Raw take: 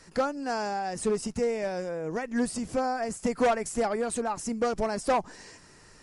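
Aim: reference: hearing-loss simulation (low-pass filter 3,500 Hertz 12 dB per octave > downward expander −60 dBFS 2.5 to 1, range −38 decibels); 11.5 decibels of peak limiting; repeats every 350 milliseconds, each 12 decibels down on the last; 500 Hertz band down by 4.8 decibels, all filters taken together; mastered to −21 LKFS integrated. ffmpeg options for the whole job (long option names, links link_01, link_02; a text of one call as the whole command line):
ffmpeg -i in.wav -af "equalizer=frequency=500:width_type=o:gain=-5.5,alimiter=level_in=6dB:limit=-24dB:level=0:latency=1,volume=-6dB,lowpass=3500,aecho=1:1:350|700|1050:0.251|0.0628|0.0157,agate=range=-38dB:threshold=-60dB:ratio=2.5,volume=18dB" out.wav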